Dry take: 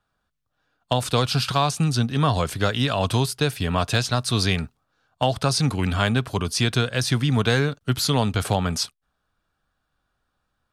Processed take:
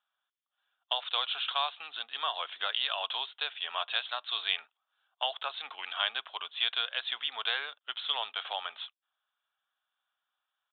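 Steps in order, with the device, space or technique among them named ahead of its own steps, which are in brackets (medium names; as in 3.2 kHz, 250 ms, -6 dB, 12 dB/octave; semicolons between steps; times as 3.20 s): musical greeting card (resampled via 8 kHz; high-pass 740 Hz 24 dB/octave; peaking EQ 3.3 kHz +10 dB 0.52 oct); trim -9 dB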